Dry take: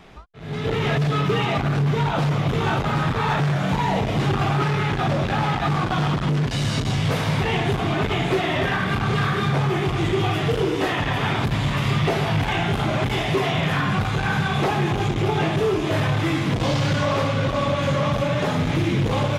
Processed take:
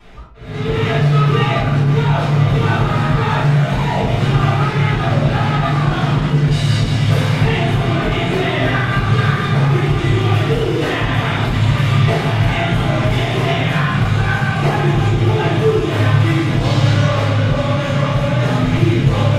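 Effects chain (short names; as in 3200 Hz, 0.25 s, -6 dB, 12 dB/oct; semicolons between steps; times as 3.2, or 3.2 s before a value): 14.33–14.73 notch 3500 Hz, Q 9.1; shoebox room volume 52 m³, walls mixed, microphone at 2.8 m; gain -8.5 dB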